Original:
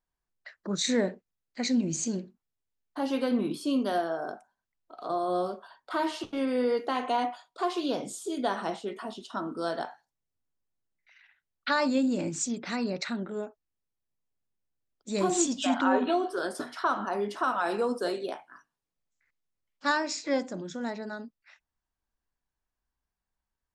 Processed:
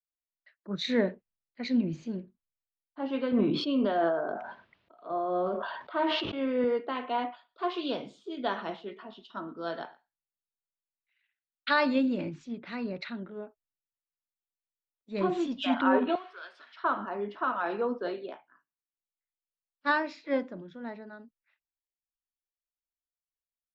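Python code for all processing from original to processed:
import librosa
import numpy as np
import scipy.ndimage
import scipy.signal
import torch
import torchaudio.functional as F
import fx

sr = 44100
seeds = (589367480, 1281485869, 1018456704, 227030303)

y = fx.chain(x, sr, fx.bandpass_edges(low_hz=110.0, high_hz=5200.0),
    fx.peak_eq(hz=620.0, db=3.0, octaves=0.43),
    fx.sustainer(db_per_s=22.0), at=(3.32, 6.64))
y = fx.chain(y, sr, fx.high_shelf(hz=3000.0, db=6.0),
    fx.echo_single(ms=119, db=-21.0), at=(7.31, 12.3))
y = fx.chain(y, sr, fx.zero_step(step_db=-41.0),
    fx.highpass(hz=1200.0, slope=12), at=(16.15, 16.76))
y = scipy.signal.sosfilt(scipy.signal.butter(4, 3400.0, 'lowpass', fs=sr, output='sos'), y)
y = fx.notch(y, sr, hz=770.0, q=12.0)
y = fx.band_widen(y, sr, depth_pct=70)
y = y * librosa.db_to_amplitude(-2.0)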